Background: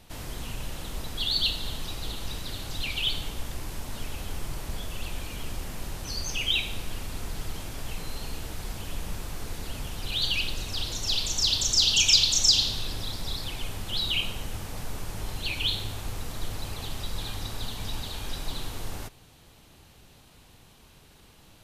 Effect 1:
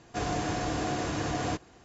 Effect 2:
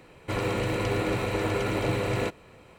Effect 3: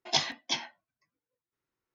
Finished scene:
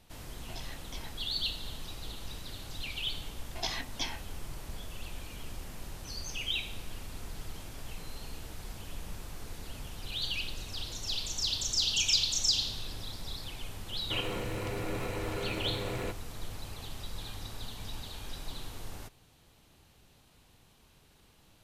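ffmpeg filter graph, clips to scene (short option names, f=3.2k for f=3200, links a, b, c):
-filter_complex "[3:a]asplit=2[a][b];[0:a]volume=-7.5dB[c];[a]acompressor=threshold=-37dB:ratio=6:attack=3.2:release=140:knee=1:detection=peak[d];[b]acompressor=threshold=-28dB:ratio=6:attack=3.2:release=140:knee=1:detection=peak[e];[2:a]alimiter=limit=-21dB:level=0:latency=1:release=71[f];[d]atrim=end=1.94,asetpts=PTS-STARTPTS,volume=-6dB,afade=t=in:d=0.004:c=hsin,afade=t=out:st=1.936:d=0.004:c=hsin,adelay=430[g];[e]atrim=end=1.94,asetpts=PTS-STARTPTS,volume=-1dB,afade=t=in:d=0.004:c=hsin,afade=t=out:st=1.936:d=0.004:c=hsin,adelay=3500[h];[f]atrim=end=2.78,asetpts=PTS-STARTPTS,volume=-6.5dB,afade=t=in:d=0.004:c=hsin,afade=t=out:st=2.776:d=0.004:c=hsin,adelay=13820[i];[c][g][h][i]amix=inputs=4:normalize=0"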